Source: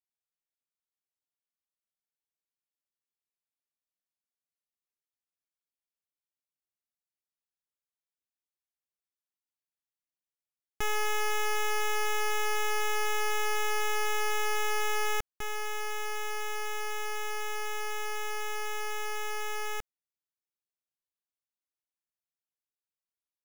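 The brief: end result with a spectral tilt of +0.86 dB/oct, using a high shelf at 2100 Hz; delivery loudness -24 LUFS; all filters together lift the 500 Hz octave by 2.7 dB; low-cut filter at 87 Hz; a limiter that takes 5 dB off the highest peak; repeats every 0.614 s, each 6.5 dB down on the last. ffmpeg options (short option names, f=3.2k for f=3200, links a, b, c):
-af "highpass=87,equalizer=f=500:t=o:g=3,highshelf=f=2.1k:g=7,alimiter=limit=-20dB:level=0:latency=1,aecho=1:1:614|1228|1842|2456|3070|3684:0.473|0.222|0.105|0.0491|0.0231|0.0109,volume=6.5dB"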